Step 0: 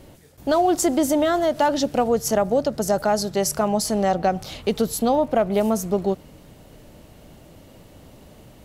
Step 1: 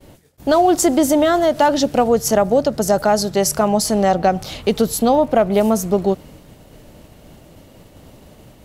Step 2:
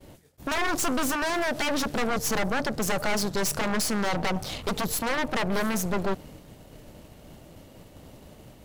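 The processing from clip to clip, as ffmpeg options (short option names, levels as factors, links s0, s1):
-af "agate=range=0.0224:threshold=0.00708:ratio=3:detection=peak,volume=1.78"
-af "aeval=exprs='0.178*(abs(mod(val(0)/0.178+3,4)-2)-1)':c=same,aeval=exprs='(tanh(15.8*val(0)+0.75)-tanh(0.75))/15.8':c=same"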